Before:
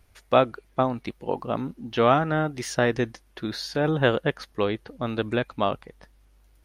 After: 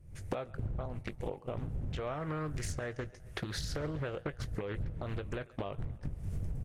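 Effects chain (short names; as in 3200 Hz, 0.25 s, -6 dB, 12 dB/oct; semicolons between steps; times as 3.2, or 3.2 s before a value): wind noise 94 Hz -29 dBFS; recorder AGC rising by 64 dB/s; gate -24 dBFS, range -13 dB; graphic EQ 125/250/500/1000/2000/4000/8000 Hz +7/-8/+4/-4/+4/-5/+10 dB; compressor 4:1, threshold -33 dBFS, peak gain reduction 19 dB; doubler 20 ms -12 dB; tape echo 0.137 s, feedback 70%, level -21 dB, low-pass 5200 Hz; Doppler distortion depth 0.75 ms; gain -4.5 dB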